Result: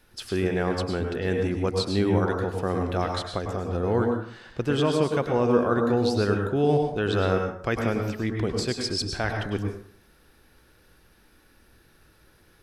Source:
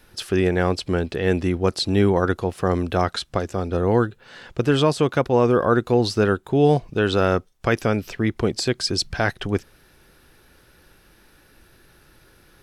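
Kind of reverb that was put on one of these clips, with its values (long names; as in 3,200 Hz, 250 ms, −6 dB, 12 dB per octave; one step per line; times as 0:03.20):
dense smooth reverb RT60 0.57 s, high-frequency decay 0.6×, pre-delay 90 ms, DRR 3 dB
level −6.5 dB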